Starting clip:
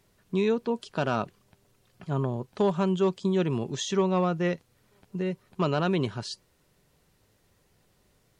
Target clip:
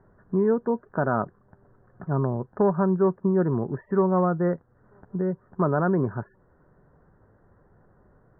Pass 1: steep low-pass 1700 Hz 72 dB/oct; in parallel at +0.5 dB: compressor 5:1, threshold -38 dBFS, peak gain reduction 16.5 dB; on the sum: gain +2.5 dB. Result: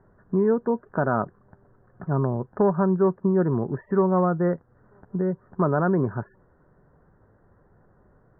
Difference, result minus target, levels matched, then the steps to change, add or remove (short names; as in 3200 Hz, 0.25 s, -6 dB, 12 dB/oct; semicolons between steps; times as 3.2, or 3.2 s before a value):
compressor: peak gain reduction -7.5 dB
change: compressor 5:1, threshold -47.5 dBFS, peak gain reduction 24 dB